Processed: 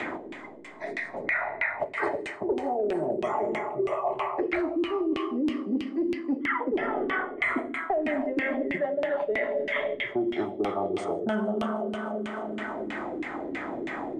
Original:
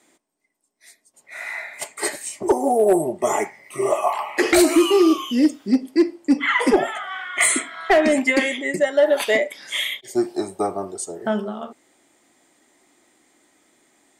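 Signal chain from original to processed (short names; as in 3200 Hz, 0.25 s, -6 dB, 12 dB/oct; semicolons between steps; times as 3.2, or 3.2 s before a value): on a send: thin delay 0.153 s, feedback 76%, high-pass 2400 Hz, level -10 dB; on the sum: Schroeder reverb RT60 2 s, combs from 33 ms, DRR 7 dB; LFO low-pass saw down 3.1 Hz 310–2700 Hz; reverse; compressor 6:1, threshold -26 dBFS, peak gain reduction 19.5 dB; reverse; bell 64 Hz +5.5 dB 1.7 oct; three-band squash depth 100%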